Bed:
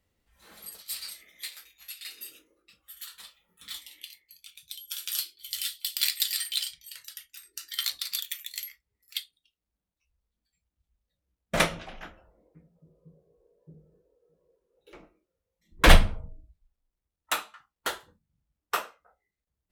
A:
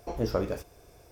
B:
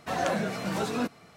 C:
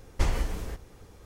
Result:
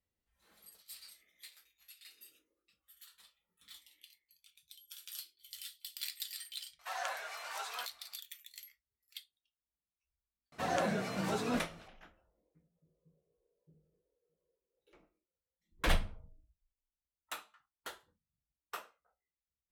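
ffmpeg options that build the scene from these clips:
-filter_complex "[2:a]asplit=2[a][b];[0:a]volume=-15dB[c];[a]highpass=f=800:w=0.5412,highpass=f=800:w=1.3066,atrim=end=1.36,asetpts=PTS-STARTPTS,volume=-6.5dB,afade=t=in:d=0.004:c=hsin,afade=t=out:st=1.356:d=0.004:c=hsin,adelay=6790[d];[b]atrim=end=1.36,asetpts=PTS-STARTPTS,volume=-5dB,afade=t=in:d=0.004:c=hsin,afade=t=out:st=1.356:d=0.004:c=hsin,adelay=10520[e];[c][d][e]amix=inputs=3:normalize=0"

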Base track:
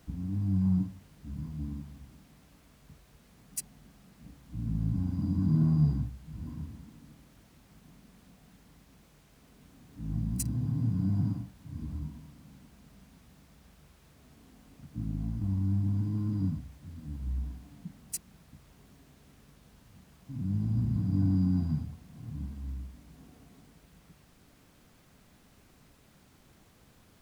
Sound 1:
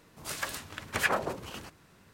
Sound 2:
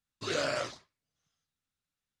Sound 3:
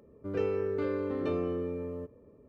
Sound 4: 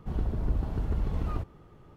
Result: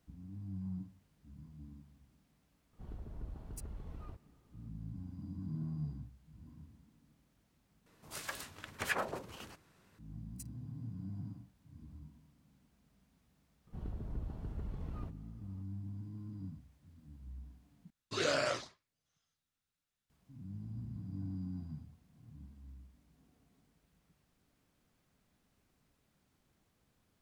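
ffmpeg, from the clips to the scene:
-filter_complex "[4:a]asplit=2[a][b];[0:a]volume=-15dB[c];[b]equalizer=f=150:t=o:w=1.8:g=4[d];[c]asplit=3[e][f][g];[e]atrim=end=7.864[h];[1:a]atrim=end=2.13,asetpts=PTS-STARTPTS,volume=-7.5dB[i];[f]atrim=start=9.986:end=17.904[j];[2:a]atrim=end=2.2,asetpts=PTS-STARTPTS,volume=-1dB[k];[g]atrim=start=20.096[l];[a]atrim=end=1.96,asetpts=PTS-STARTPTS,volume=-17dB,afade=t=in:d=0.004:c=hsin,afade=t=out:st=1.956:d=0.004:c=hsin,adelay=2730[m];[d]atrim=end=1.96,asetpts=PTS-STARTPTS,volume=-14dB,afade=t=in:d=0.004:c=hsin,afade=t=out:st=1.956:d=0.004:c=hsin,adelay=13670[n];[h][i]acrossfade=d=0.004:c1=hsin:c2=hsin[o];[o][j]acrossfade=d=0.004:c1=hsin:c2=hsin[p];[p][k]acrossfade=d=0.004:c1=hsin:c2=hsin[q];[q][l]acrossfade=d=0.004:c1=hsin:c2=hsin[r];[r][m][n]amix=inputs=3:normalize=0"

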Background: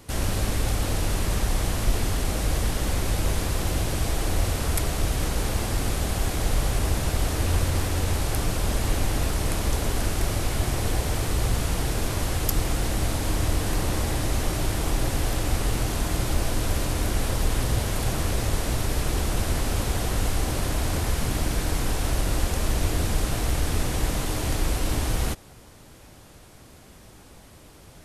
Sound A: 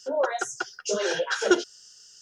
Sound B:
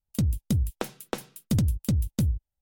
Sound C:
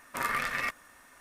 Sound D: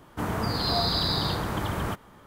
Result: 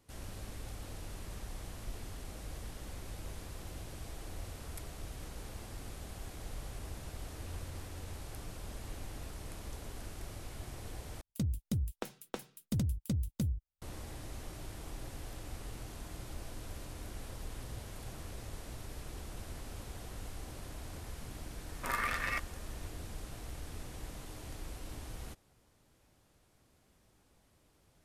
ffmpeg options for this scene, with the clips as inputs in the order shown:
-filter_complex "[0:a]volume=-20dB,asplit=2[a][b];[a]atrim=end=11.214[c];[2:a]atrim=end=2.61,asetpts=PTS-STARTPTS,volume=-9dB[d];[b]atrim=start=13.816[e];[3:a]atrim=end=1.2,asetpts=PTS-STARTPTS,volume=-4dB,afade=t=in:d=0.004:c=hsin,afade=t=out:st=1.196:d=0.004:c=hsin,adelay=21690[f];[c][d]acrossfade=d=0.004:c1=hsin:c2=hsin[g];[g][e]acrossfade=d=0.004:c1=hsin:c2=hsin[h];[h][f]amix=inputs=2:normalize=0"

